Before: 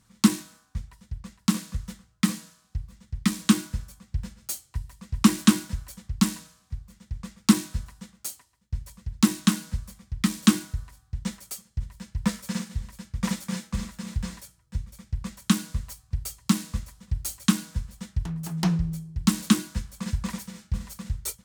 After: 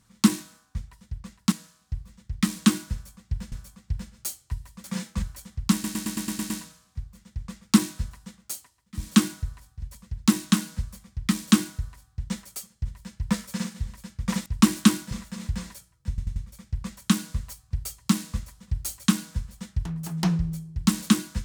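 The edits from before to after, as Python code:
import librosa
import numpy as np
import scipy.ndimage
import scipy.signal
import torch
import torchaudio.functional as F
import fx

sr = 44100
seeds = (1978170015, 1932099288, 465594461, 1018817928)

y = fx.edit(x, sr, fx.cut(start_s=1.52, length_s=0.83),
    fx.repeat(start_s=3.76, length_s=0.59, count=2),
    fx.swap(start_s=5.08, length_s=0.66, other_s=13.41, other_length_s=0.38),
    fx.stutter(start_s=6.25, slice_s=0.11, count=8),
    fx.duplicate(start_s=10.35, length_s=0.8, to_s=8.79, crossfade_s=0.24),
    fx.stutter(start_s=14.76, slice_s=0.09, count=4), tone=tone)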